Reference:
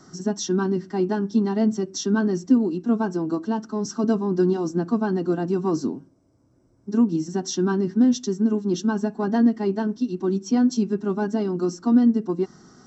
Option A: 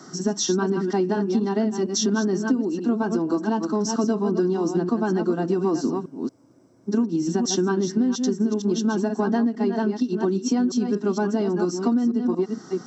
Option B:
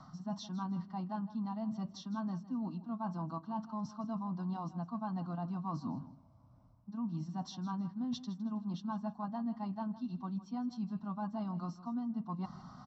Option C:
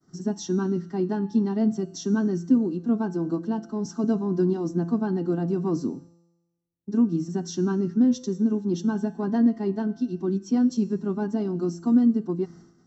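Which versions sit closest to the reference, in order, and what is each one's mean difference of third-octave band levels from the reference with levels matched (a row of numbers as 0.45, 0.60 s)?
C, A, B; 2.5, 4.0, 5.5 dB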